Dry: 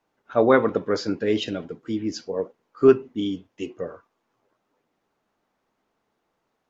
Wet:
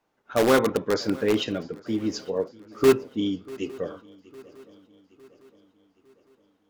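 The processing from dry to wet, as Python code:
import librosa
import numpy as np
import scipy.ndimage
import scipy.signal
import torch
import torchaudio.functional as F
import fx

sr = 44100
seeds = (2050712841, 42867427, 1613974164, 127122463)

p1 = (np.mod(10.0 ** (13.5 / 20.0) * x + 1.0, 2.0) - 1.0) / 10.0 ** (13.5 / 20.0)
p2 = x + F.gain(torch.from_numpy(p1), -7.0).numpy()
p3 = fx.echo_swing(p2, sr, ms=857, ratio=3, feedback_pct=47, wet_db=-22.0)
y = F.gain(torch.from_numpy(p3), -3.0).numpy()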